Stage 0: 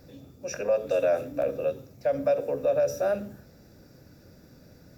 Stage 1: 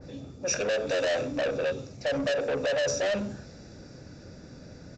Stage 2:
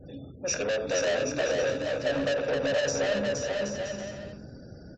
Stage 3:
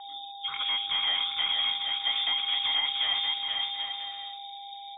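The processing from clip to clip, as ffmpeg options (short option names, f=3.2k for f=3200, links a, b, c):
-af "aresample=16000,asoftclip=type=tanh:threshold=-31.5dB,aresample=44100,adynamicequalizer=threshold=0.00316:dfrequency=2100:dqfactor=0.7:tfrequency=2100:tqfactor=0.7:attack=5:release=100:ratio=0.375:range=3:mode=boostabove:tftype=highshelf,volume=6.5dB"
-filter_complex "[0:a]afftfilt=real='re*gte(hypot(re,im),0.00316)':imag='im*gte(hypot(re,im),0.00316)':win_size=1024:overlap=0.75,acontrast=27,asplit=2[a][b];[b]aecho=0:1:470|775.5|974.1|1103|1187:0.631|0.398|0.251|0.158|0.1[c];[a][c]amix=inputs=2:normalize=0,volume=-6dB"
-af "acontrast=81,aeval=exprs='val(0)+0.0251*sin(2*PI*3000*n/s)':c=same,lowpass=f=3.2k:t=q:w=0.5098,lowpass=f=3.2k:t=q:w=0.6013,lowpass=f=3.2k:t=q:w=0.9,lowpass=f=3.2k:t=q:w=2.563,afreqshift=-3800,volume=-8dB"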